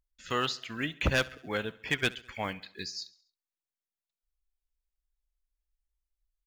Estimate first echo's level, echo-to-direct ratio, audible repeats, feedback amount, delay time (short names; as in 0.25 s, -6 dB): -21.0 dB, -19.5 dB, 3, 52%, 68 ms